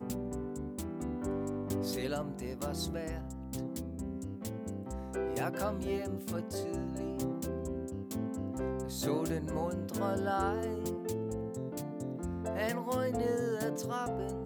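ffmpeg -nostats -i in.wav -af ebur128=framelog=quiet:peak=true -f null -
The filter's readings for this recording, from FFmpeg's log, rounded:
Integrated loudness:
  I:         -36.5 LUFS
  Threshold: -46.5 LUFS
Loudness range:
  LRA:         3.2 LU
  Threshold: -56.6 LUFS
  LRA low:   -38.3 LUFS
  LRA high:  -35.1 LUFS
True peak:
  Peak:      -19.1 dBFS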